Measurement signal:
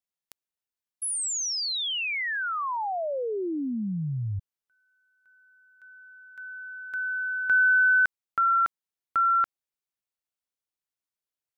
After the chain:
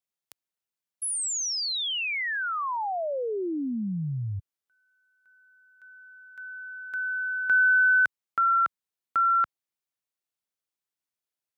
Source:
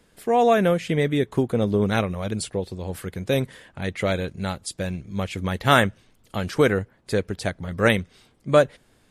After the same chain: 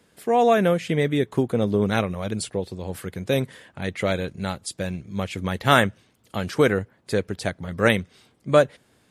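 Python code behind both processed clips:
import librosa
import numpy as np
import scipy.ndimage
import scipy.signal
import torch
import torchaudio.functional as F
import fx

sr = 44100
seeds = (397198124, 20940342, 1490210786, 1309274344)

y = scipy.signal.sosfilt(scipy.signal.butter(2, 81.0, 'highpass', fs=sr, output='sos'), x)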